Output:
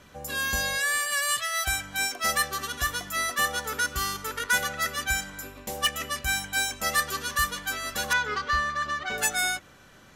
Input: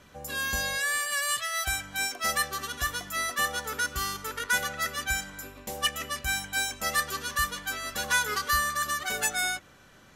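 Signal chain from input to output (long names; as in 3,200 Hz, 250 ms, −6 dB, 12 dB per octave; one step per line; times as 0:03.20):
in parallel at −11 dB: wrap-around overflow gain 16.5 dB
0:08.13–0:09.18: on the sum: high-frequency loss of the air 180 metres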